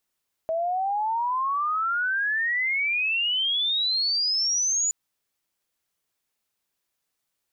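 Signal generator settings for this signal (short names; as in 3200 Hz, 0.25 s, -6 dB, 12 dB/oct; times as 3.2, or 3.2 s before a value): chirp logarithmic 640 Hz -> 7000 Hz -23 dBFS -> -21 dBFS 4.42 s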